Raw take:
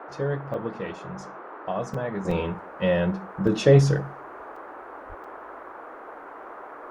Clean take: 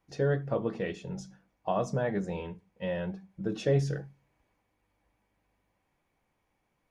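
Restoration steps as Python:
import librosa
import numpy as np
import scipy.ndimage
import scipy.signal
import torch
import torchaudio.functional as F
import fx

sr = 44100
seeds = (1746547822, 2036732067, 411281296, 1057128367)

y = fx.highpass(x, sr, hz=140.0, slope=24, at=(5.08, 5.2), fade=0.02)
y = fx.fix_interpolate(y, sr, at_s=(0.54, 1.94, 2.31, 3.47, 4.56, 5.24), length_ms=3.8)
y = fx.noise_reduce(y, sr, print_start_s=5.91, print_end_s=6.41, reduce_db=30.0)
y = fx.fix_level(y, sr, at_s=2.25, step_db=-10.5)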